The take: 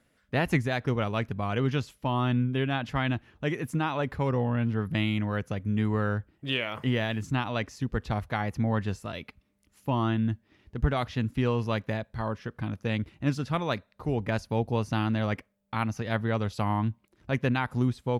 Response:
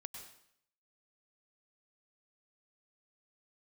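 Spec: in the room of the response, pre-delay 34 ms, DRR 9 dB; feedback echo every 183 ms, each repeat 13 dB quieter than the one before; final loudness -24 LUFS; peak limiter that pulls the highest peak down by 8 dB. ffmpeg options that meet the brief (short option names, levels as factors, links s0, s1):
-filter_complex "[0:a]alimiter=limit=0.0891:level=0:latency=1,aecho=1:1:183|366|549:0.224|0.0493|0.0108,asplit=2[s0][s1];[1:a]atrim=start_sample=2205,adelay=34[s2];[s1][s2]afir=irnorm=-1:irlink=0,volume=0.562[s3];[s0][s3]amix=inputs=2:normalize=0,volume=2.37"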